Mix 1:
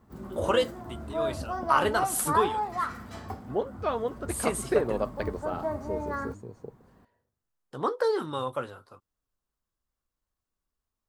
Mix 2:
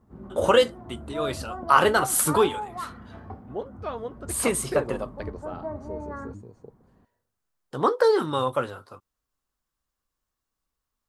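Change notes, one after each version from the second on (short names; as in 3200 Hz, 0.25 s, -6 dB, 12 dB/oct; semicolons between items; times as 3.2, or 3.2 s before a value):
first voice +6.5 dB; second voice -4.0 dB; background: add tape spacing loss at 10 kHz 43 dB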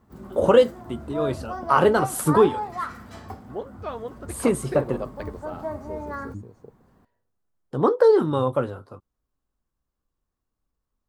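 first voice: add tilt shelf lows +7.5 dB, about 850 Hz; background: remove tape spacing loss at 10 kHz 43 dB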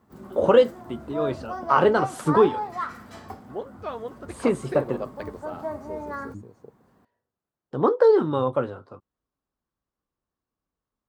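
first voice: add air absorption 90 m; master: add HPF 150 Hz 6 dB/oct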